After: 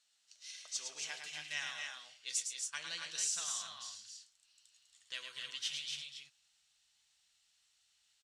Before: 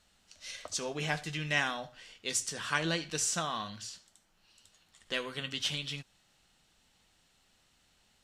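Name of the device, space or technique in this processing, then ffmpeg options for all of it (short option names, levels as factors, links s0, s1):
piezo pickup straight into a mixer: -filter_complex "[0:a]asplit=3[s0][s1][s2];[s0]afade=t=out:st=2.38:d=0.02[s3];[s1]agate=range=0.0891:threshold=0.0251:ratio=16:detection=peak,afade=t=in:st=2.38:d=0.02,afade=t=out:st=3.06:d=0.02[s4];[s2]afade=t=in:st=3.06:d=0.02[s5];[s3][s4][s5]amix=inputs=3:normalize=0,aecho=1:1:107.9|242|274.1:0.501|0.316|0.562,asubboost=boost=9.5:cutoff=94,lowpass=6700,aderivative"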